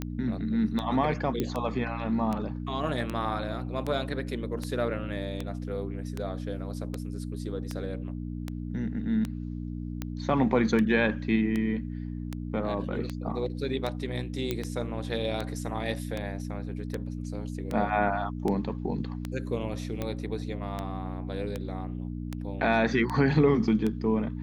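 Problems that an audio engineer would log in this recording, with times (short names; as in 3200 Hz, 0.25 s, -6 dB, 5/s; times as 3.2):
hum 60 Hz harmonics 5 -35 dBFS
tick 78 rpm -18 dBFS
1.4 pop -15 dBFS
14.51 pop -15 dBFS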